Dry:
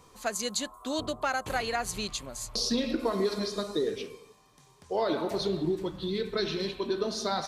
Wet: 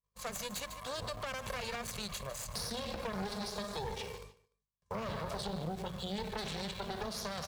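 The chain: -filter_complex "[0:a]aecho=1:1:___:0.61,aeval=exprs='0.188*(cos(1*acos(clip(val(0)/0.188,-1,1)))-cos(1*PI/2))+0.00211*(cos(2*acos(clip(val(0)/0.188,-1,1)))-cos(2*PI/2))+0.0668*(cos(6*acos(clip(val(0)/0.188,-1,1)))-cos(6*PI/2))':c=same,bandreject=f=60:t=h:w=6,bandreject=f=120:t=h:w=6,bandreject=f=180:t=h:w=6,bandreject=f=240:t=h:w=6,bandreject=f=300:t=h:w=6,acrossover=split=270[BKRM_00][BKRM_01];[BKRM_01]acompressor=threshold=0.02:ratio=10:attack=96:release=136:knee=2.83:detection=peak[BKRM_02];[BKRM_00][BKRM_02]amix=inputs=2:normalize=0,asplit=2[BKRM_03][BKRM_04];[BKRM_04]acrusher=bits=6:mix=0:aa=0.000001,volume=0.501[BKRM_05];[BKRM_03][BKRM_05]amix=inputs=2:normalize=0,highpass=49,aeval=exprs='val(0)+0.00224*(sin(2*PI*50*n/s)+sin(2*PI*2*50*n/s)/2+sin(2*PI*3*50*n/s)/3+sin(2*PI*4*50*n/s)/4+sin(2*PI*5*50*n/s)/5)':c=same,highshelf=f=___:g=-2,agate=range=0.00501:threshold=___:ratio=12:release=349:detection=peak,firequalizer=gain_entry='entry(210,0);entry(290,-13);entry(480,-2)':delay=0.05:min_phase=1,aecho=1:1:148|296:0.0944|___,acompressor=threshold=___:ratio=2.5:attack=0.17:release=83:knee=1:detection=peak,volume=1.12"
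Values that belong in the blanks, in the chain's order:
1.8, 11000, 0.00562, 0.0236, 0.0112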